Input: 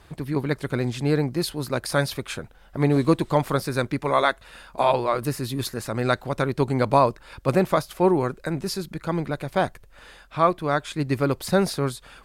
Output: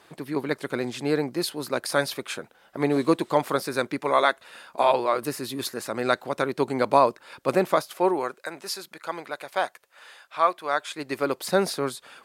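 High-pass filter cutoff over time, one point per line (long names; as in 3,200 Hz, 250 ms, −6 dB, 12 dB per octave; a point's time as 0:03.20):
0:07.73 270 Hz
0:08.49 660 Hz
0:10.63 660 Hz
0:11.57 270 Hz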